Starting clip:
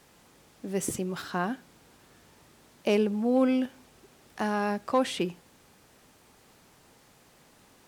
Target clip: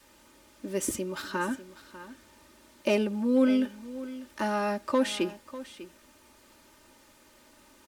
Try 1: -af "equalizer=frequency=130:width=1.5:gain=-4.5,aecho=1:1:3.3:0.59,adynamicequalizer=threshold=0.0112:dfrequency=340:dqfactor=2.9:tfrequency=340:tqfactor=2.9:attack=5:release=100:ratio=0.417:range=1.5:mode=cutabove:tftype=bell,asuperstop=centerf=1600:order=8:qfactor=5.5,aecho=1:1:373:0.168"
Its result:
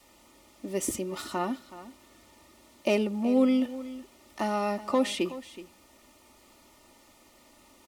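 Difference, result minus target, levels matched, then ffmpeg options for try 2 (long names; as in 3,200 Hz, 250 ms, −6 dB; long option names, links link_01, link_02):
echo 224 ms early; 2,000 Hz band −3.0 dB
-af "equalizer=frequency=130:width=1.5:gain=-4.5,aecho=1:1:3.3:0.59,adynamicequalizer=threshold=0.0112:dfrequency=340:dqfactor=2.9:tfrequency=340:tqfactor=2.9:attack=5:release=100:ratio=0.417:range=1.5:mode=cutabove:tftype=bell,asuperstop=centerf=730:order=8:qfactor=5.5,aecho=1:1:597:0.168"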